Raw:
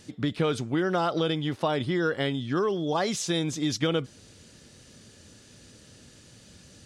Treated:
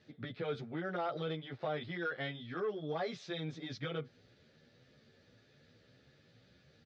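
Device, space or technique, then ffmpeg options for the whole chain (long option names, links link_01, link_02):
barber-pole flanger into a guitar amplifier: -filter_complex "[0:a]asettb=1/sr,asplit=3[link_01][link_02][link_03];[link_01]atrim=end=1.764[link_04];[link_02]atrim=start=1.76:end=2.59,asetpts=PTS-STARTPTS,afade=type=in:duration=0.004:curve=qsin,afade=type=out:start_time=0.826:duration=0.004:curve=qsin,tiltshelf=frequency=830:gain=-3.5[link_05];[link_03]atrim=start=2.586[link_06];[link_04][link_05]acrossfade=duration=0.004:curve1=hsin:curve2=qsin[link_07];[link_07][link_06]acrossfade=duration=0.004:curve1=qsin:curve2=hsin,asplit=2[link_08][link_09];[link_09]adelay=11.2,afreqshift=1.8[link_10];[link_08][link_10]amix=inputs=2:normalize=1,asoftclip=type=tanh:threshold=-19.5dB,highpass=84,equalizer=frequency=87:width_type=q:width=4:gain=-8,equalizer=frequency=200:width_type=q:width=4:gain=-7,equalizer=frequency=310:width_type=q:width=4:gain=-7,equalizer=frequency=1000:width_type=q:width=4:gain=-9,equalizer=frequency=2900:width_type=q:width=4:gain=-8,lowpass=frequency=3800:width=0.5412,lowpass=frequency=3800:width=1.3066,volume=-5dB"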